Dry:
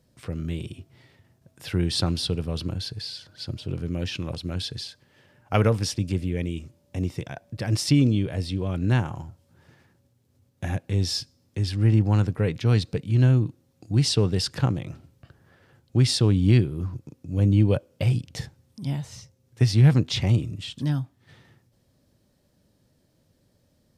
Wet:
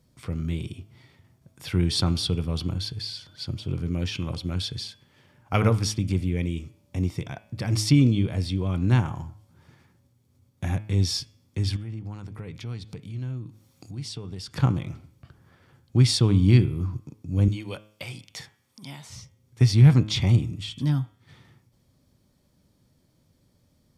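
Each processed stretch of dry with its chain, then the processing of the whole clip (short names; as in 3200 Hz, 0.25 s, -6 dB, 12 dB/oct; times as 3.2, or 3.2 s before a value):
11.76–14.54 compressor 2.5:1, threshold -40 dBFS + mismatched tape noise reduction encoder only
17.48–19.1 HPF 1300 Hz 6 dB/oct + three-band squash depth 40%
whole clip: comb 0.9 ms, depth 30%; de-hum 106.3 Hz, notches 33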